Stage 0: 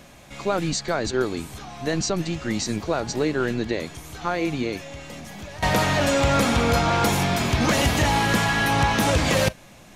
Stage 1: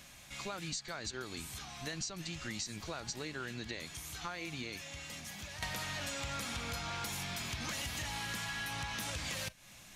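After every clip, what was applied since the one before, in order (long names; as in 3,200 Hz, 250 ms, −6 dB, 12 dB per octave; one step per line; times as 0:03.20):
guitar amp tone stack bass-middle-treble 5-5-5
downward compressor, threshold −42 dBFS, peak gain reduction 12.5 dB
level +4.5 dB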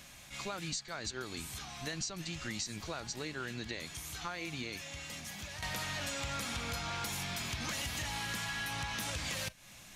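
level that may rise only so fast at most 200 dB per second
level +1.5 dB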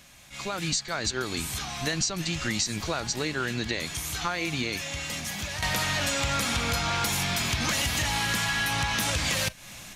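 automatic gain control gain up to 11 dB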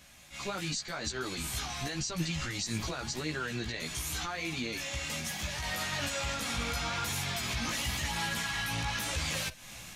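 brickwall limiter −22 dBFS, peak gain reduction 8.5 dB
multi-voice chorus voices 2, 0.91 Hz, delay 15 ms, depth 2.8 ms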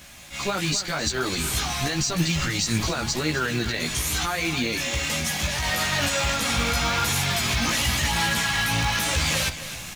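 single-tap delay 261 ms −12.5 dB
in parallel at −8 dB: log-companded quantiser 4 bits
on the sum: level +7 dB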